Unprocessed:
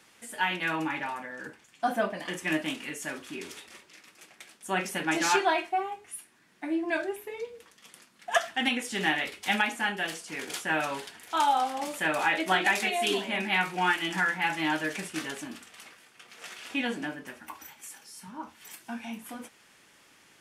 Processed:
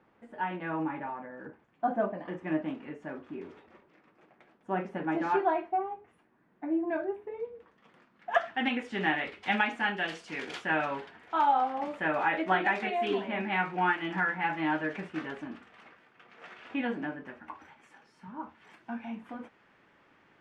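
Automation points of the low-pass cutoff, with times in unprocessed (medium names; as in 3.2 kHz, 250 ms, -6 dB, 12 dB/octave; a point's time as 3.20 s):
7.33 s 1 kHz
8.68 s 2.1 kHz
9.28 s 2.1 kHz
10.35 s 3.8 kHz
11.07 s 1.7 kHz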